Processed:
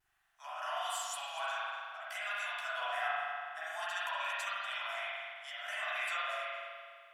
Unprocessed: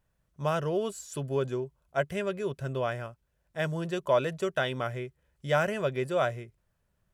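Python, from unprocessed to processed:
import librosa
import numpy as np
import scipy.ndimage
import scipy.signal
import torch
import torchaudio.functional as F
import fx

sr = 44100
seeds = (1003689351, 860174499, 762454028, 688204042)

y = scipy.signal.sosfilt(scipy.signal.butter(16, 690.0, 'highpass', fs=sr, output='sos'), x)
y = fx.peak_eq(y, sr, hz=920.0, db=-9.5, octaves=0.3)
y = fx.over_compress(y, sr, threshold_db=-43.0, ratio=-1.0)
y = fx.cheby_harmonics(y, sr, harmonics=(4,), levels_db=(-45,), full_scale_db=-25.5)
y = fx.vibrato(y, sr, rate_hz=1.4, depth_cents=59.0)
y = fx.chorus_voices(y, sr, voices=6, hz=0.68, base_ms=13, depth_ms=3.2, mix_pct=40)
y = y + 10.0 ** (-16.0 / 20.0) * np.pad(y, (int(241 * sr / 1000.0), 0))[:len(y)]
y = fx.rev_spring(y, sr, rt60_s=2.0, pass_ms=(41,), chirp_ms=75, drr_db=-8.0)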